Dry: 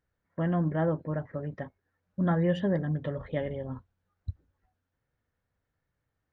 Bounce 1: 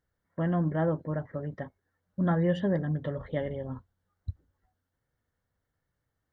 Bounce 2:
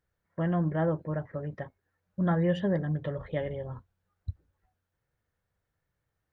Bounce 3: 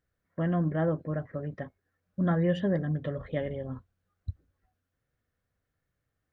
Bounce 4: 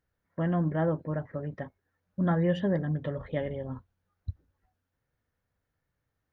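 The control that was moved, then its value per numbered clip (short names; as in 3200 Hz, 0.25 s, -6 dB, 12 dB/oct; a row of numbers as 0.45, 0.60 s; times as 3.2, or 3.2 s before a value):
notch, frequency: 2500, 260, 900, 7900 Hz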